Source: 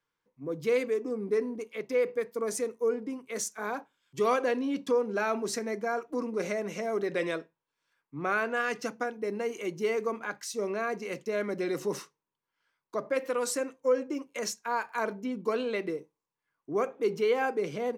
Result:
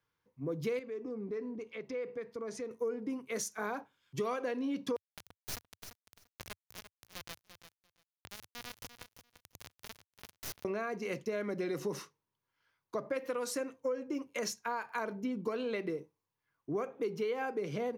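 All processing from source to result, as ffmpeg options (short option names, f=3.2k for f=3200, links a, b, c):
-filter_complex "[0:a]asettb=1/sr,asplit=3[a][b][c];[a]atrim=end=0.794[d];[b]atrim=start=0.79:end=2.71,asetpts=PTS-STARTPTS,afade=t=in:d=0.004:c=qsin,afade=t=out:st=1.916:d=0.004:c=qsin,lowpass=5.2k,acompressor=threshold=-44dB:ratio=2:attack=3.2:release=140:knee=1:detection=peak[e];[c]atrim=start=2.706[f];[d][e]acrossfade=d=0.004:c1=hsin:c2=qsin[g];[g][f]acrossfade=d=0.004:c1=qsin:c2=hsin,asettb=1/sr,asplit=3[h][i][j];[h]atrim=end=4.964[k];[i]atrim=start=4.96:end=10.65,asetpts=PTS-STARTPTS,afade=t=in:d=0.004:c=qsin,afade=t=out:st=5.686:d=0.004:c=qsin,acrossover=split=140|3000[l][m][n];[m]acompressor=threshold=-43dB:ratio=6:attack=3.2:release=140:knee=2.83:detection=peak[o];[l][o][n]amix=inputs=3:normalize=0,acrusher=bits=3:dc=4:mix=0:aa=0.000001,aecho=1:1:343|686:0.282|0.0423,atrim=end_sample=250929[p];[j]atrim=start=10.646[q];[k][p]acrossfade=d=0.004:c1=hsin:c2=qsin[r];[r][q]acrossfade=d=0.004:c1=qsin:c2=hsin,equalizer=f=95:w=1.3:g=11,acompressor=threshold=-32dB:ratio=6,equalizer=f=7.9k:w=4.7:g=-7.5"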